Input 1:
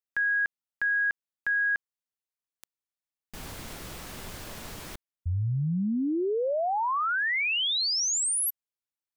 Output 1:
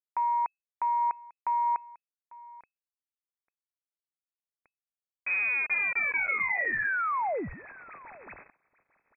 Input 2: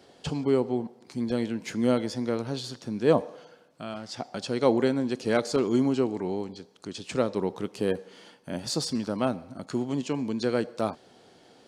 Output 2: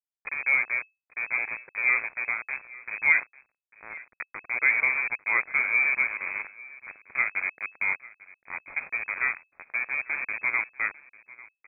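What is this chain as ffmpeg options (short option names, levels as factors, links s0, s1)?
-filter_complex "[0:a]bandreject=f=76.48:t=h:w=4,bandreject=f=152.96:t=h:w=4,bandreject=f=229.44:t=h:w=4,bandreject=f=305.92:t=h:w=4,bandreject=f=382.4:t=h:w=4,bandreject=f=458.88:t=h:w=4,bandreject=f=535.36:t=h:w=4,bandreject=f=611.84:t=h:w=4,bandreject=f=688.32:t=h:w=4,bandreject=f=764.8:t=h:w=4,bandreject=f=841.28:t=h:w=4,bandreject=f=917.76:t=h:w=4,aeval=exprs='val(0)*gte(abs(val(0)),0.0422)':c=same,asplit=2[s0][s1];[s1]aecho=0:1:847:0.0891[s2];[s0][s2]amix=inputs=2:normalize=0,lowpass=f=2200:t=q:w=0.5098,lowpass=f=2200:t=q:w=0.6013,lowpass=f=2200:t=q:w=0.9,lowpass=f=2200:t=q:w=2.563,afreqshift=-2600"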